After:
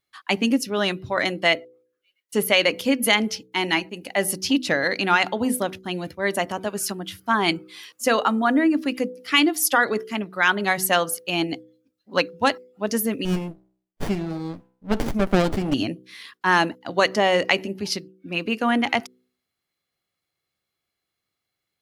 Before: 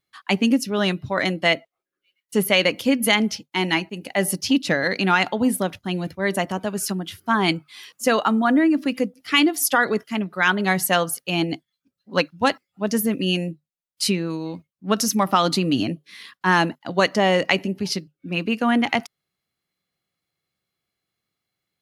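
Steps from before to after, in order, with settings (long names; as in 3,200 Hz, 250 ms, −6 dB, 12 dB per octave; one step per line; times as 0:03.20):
parametric band 170 Hz −6 dB 0.84 octaves
hum removal 62.77 Hz, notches 8
0:13.25–0:15.74: windowed peak hold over 33 samples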